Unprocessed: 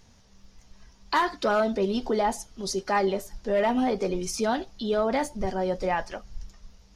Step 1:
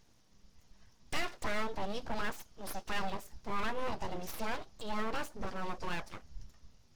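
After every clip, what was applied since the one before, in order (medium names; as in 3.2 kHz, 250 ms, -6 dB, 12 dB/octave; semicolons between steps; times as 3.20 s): full-wave rectifier; trim -8 dB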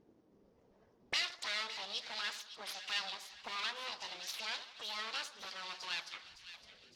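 auto-wah 320–4100 Hz, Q 2.2, up, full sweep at -35.5 dBFS; two-band feedback delay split 1.6 kHz, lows 87 ms, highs 561 ms, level -12 dB; trim +11 dB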